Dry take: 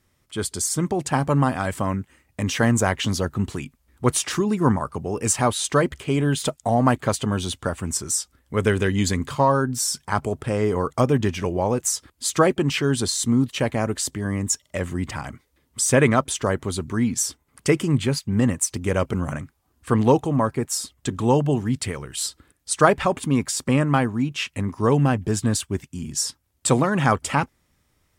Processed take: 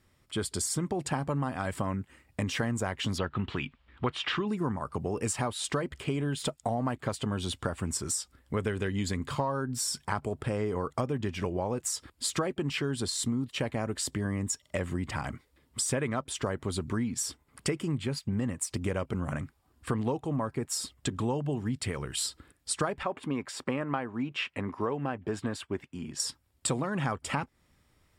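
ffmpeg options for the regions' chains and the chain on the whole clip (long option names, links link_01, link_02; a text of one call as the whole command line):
ffmpeg -i in.wav -filter_complex "[0:a]asettb=1/sr,asplit=3[link_01][link_02][link_03];[link_01]atrim=end=3.184[link_04];[link_02]atrim=start=3.18:end=4.48,asetpts=PTS-STARTPTS,afade=type=in:duration=0.004:curve=qsin,afade=type=out:start_time=1.296:duration=0.004:curve=qsin,lowpass=frequency=3200:width_type=q:width=2.7,equalizer=frequency=1300:width=0.84:gain=6[link_05];[link_03]atrim=start=4.476[link_06];[link_04][link_05]acrossfade=duration=0.004:curve1=hsin:curve2=qsin[link_07];[link_07][link_06]acrossfade=duration=0.004:curve1=qsin:curve2=hsin,asettb=1/sr,asplit=3[link_08][link_09][link_10];[link_08]atrim=end=23.034[link_11];[link_09]atrim=start=23.03:end=26.2,asetpts=PTS-STARTPTS,afade=type=in:duration=0.004:curve=qsin,afade=type=out:start_time=3.166:duration=0.004:curve=qsin,highpass=63,bass=frequency=250:gain=-11,treble=frequency=4000:gain=-14[link_12];[link_10]atrim=start=26.196[link_13];[link_11][link_12]acrossfade=duration=0.004:curve1=hsin:curve2=qsin[link_14];[link_14][link_13]acrossfade=duration=0.004:curve1=qsin:curve2=hsin,highshelf=frequency=9800:gain=-7.5,bandreject=frequency=6200:width=8.8,acompressor=threshold=-28dB:ratio=6" out.wav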